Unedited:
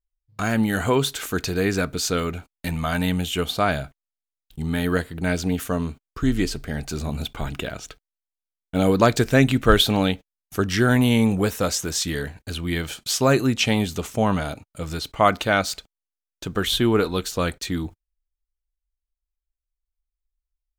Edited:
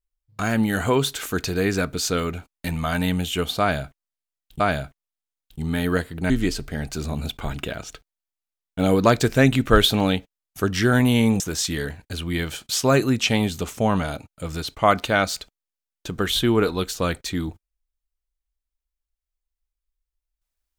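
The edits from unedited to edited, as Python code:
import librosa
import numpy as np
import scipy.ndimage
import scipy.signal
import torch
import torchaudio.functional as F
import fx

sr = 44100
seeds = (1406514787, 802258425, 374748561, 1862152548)

y = fx.edit(x, sr, fx.repeat(start_s=3.6, length_s=1.0, count=2),
    fx.cut(start_s=5.3, length_s=0.96),
    fx.cut(start_s=11.36, length_s=0.41), tone=tone)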